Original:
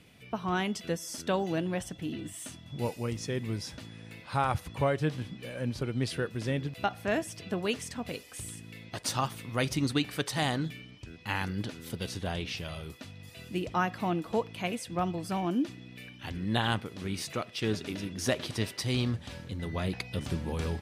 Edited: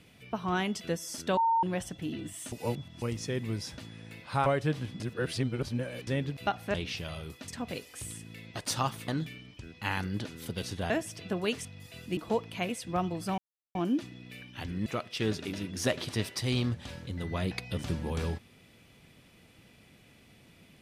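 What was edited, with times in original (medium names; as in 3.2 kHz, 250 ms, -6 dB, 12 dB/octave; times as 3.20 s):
1.37–1.63 s: bleep 912 Hz -22.5 dBFS
2.52–3.02 s: reverse
4.46–4.83 s: delete
5.37–6.44 s: reverse
7.11–7.86 s: swap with 12.34–13.08 s
9.46–10.52 s: delete
13.60–14.20 s: delete
15.41 s: insert silence 0.37 s
16.52–17.28 s: delete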